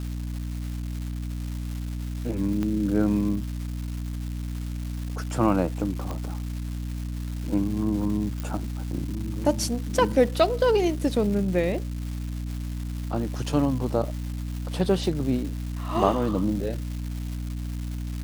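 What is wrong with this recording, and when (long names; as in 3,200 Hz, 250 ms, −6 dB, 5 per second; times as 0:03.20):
surface crackle 580 per second −34 dBFS
mains hum 60 Hz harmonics 5 −31 dBFS
0:02.63: click −17 dBFS
0:06.11: click −19 dBFS
0:08.40: click −18 dBFS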